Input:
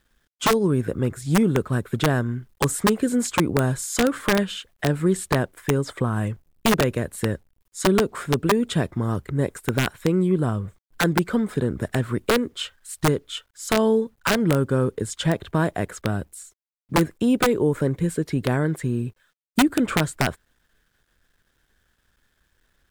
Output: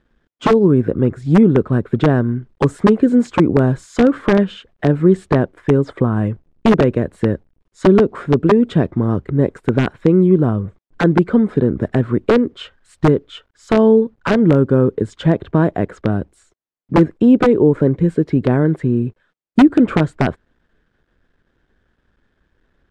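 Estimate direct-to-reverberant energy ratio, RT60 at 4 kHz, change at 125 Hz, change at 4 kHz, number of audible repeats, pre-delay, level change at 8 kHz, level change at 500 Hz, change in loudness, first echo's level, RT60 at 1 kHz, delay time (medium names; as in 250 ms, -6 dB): no reverb, no reverb, +7.0 dB, -4.0 dB, no echo, no reverb, under -10 dB, +8.0 dB, +7.5 dB, no echo, no reverb, no echo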